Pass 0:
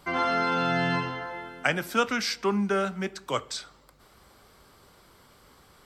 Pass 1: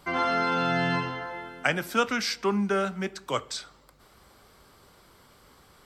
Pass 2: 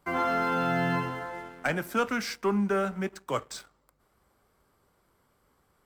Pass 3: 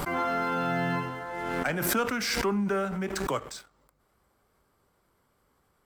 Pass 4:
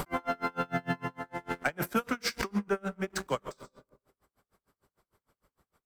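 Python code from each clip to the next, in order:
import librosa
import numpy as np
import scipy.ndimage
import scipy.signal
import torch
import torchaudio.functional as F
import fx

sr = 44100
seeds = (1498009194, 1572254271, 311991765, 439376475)

y1 = x
y2 = fx.leveller(y1, sr, passes=2)
y2 = fx.peak_eq(y2, sr, hz=4100.0, db=-8.5, octaves=1.5)
y2 = y2 * 10.0 ** (-7.5 / 20.0)
y3 = fx.pre_swell(y2, sr, db_per_s=26.0)
y3 = y3 * 10.0 ** (-1.5 / 20.0)
y4 = fx.rev_freeverb(y3, sr, rt60_s=1.1, hf_ratio=0.3, predelay_ms=95, drr_db=12.5)
y4 = y4 * 10.0 ** (-34 * (0.5 - 0.5 * np.cos(2.0 * np.pi * 6.6 * np.arange(len(y4)) / sr)) / 20.0)
y4 = y4 * 10.0 ** (2.0 / 20.0)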